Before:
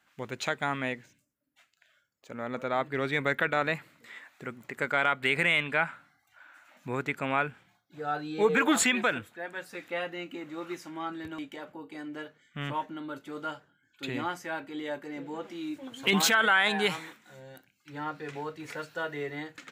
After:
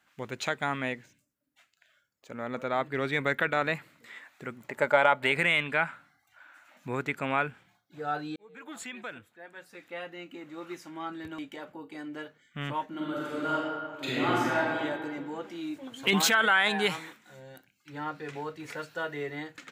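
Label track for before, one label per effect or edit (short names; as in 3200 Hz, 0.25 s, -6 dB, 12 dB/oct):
4.690000	5.320000	small resonant body resonances 610/870 Hz, height 15 dB
8.360000	11.550000	fade in
12.880000	14.790000	reverb throw, RT60 1.8 s, DRR -6.5 dB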